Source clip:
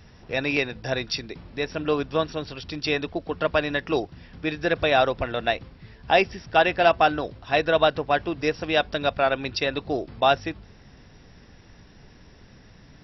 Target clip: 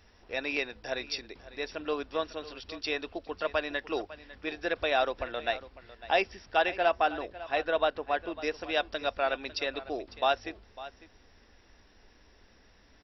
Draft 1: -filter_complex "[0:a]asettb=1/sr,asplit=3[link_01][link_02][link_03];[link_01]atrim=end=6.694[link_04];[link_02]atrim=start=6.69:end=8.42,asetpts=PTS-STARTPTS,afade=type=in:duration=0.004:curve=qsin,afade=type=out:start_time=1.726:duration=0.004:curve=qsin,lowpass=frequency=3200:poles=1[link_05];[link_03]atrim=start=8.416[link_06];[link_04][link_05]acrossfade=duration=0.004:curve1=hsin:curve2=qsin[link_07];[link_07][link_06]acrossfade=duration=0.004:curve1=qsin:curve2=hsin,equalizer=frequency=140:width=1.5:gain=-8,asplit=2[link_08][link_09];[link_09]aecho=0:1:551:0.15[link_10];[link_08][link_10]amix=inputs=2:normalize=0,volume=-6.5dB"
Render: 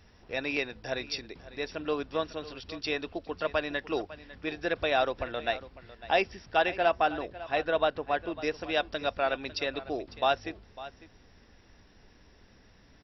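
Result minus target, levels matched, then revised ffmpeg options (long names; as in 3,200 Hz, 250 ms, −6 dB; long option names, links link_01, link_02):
125 Hz band +5.5 dB
-filter_complex "[0:a]asettb=1/sr,asplit=3[link_01][link_02][link_03];[link_01]atrim=end=6.694[link_04];[link_02]atrim=start=6.69:end=8.42,asetpts=PTS-STARTPTS,afade=type=in:duration=0.004:curve=qsin,afade=type=out:start_time=1.726:duration=0.004:curve=qsin,lowpass=frequency=3200:poles=1[link_05];[link_03]atrim=start=8.416[link_06];[link_04][link_05]acrossfade=duration=0.004:curve1=hsin:curve2=qsin[link_07];[link_07][link_06]acrossfade=duration=0.004:curve1=qsin:curve2=hsin,equalizer=frequency=140:width=1.5:gain=-19.5,asplit=2[link_08][link_09];[link_09]aecho=0:1:551:0.15[link_10];[link_08][link_10]amix=inputs=2:normalize=0,volume=-6.5dB"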